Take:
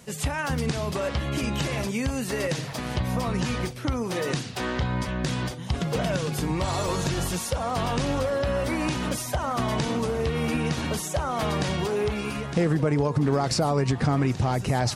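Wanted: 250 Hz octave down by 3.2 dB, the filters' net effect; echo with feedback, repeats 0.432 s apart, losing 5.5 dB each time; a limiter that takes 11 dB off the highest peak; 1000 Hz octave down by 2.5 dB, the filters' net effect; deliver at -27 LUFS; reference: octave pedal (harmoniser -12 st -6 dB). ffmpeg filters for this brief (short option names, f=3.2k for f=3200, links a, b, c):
-filter_complex "[0:a]equalizer=f=250:t=o:g=-4.5,equalizer=f=1k:t=o:g=-3,alimiter=level_in=1.5dB:limit=-24dB:level=0:latency=1,volume=-1.5dB,aecho=1:1:432|864|1296|1728|2160|2592|3024:0.531|0.281|0.149|0.079|0.0419|0.0222|0.0118,asplit=2[a][b];[b]asetrate=22050,aresample=44100,atempo=2,volume=-6dB[c];[a][c]amix=inputs=2:normalize=0,volume=4.5dB"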